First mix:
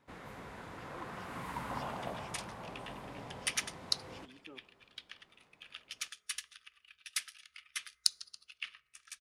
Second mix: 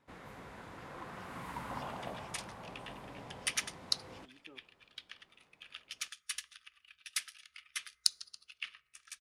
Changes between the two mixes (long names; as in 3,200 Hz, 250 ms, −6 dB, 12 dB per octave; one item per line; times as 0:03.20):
speech −4.0 dB
first sound: send off